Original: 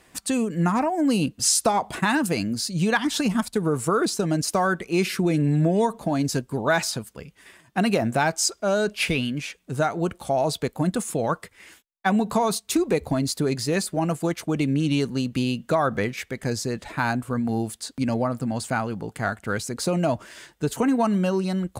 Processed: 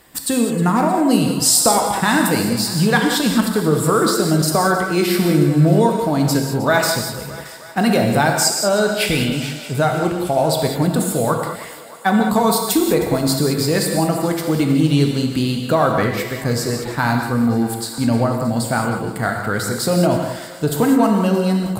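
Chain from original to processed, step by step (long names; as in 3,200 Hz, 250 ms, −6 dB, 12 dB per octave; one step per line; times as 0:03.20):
high-shelf EQ 6,800 Hz +12 dB
reverb whose tail is shaped and stops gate 230 ms flat, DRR 2 dB
reversed playback
upward compression, threshold −31 dBFS
reversed playback
thirty-one-band graphic EQ 2,500 Hz −6 dB, 6,300 Hz −11 dB, 10,000 Hz −9 dB
feedback echo with a high-pass in the loop 312 ms, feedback 70%, high-pass 340 Hz, level −16 dB
level +4.5 dB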